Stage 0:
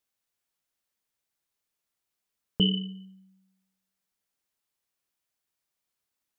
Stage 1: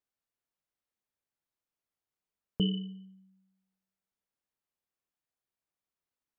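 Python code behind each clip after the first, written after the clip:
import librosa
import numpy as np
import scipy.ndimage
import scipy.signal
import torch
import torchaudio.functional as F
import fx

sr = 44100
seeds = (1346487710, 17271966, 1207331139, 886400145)

y = fx.high_shelf(x, sr, hz=2200.0, db=-10.0)
y = F.gain(torch.from_numpy(y), -3.5).numpy()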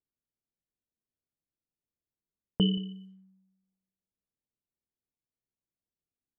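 y = x + 10.0 ** (-21.5 / 20.0) * np.pad(x, (int(177 * sr / 1000.0), 0))[:len(x)]
y = fx.env_lowpass(y, sr, base_hz=360.0, full_db=-39.5)
y = F.gain(torch.from_numpy(y), 3.5).numpy()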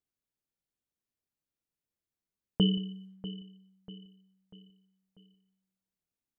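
y = fx.echo_feedback(x, sr, ms=642, feedback_pct=45, wet_db=-15.0)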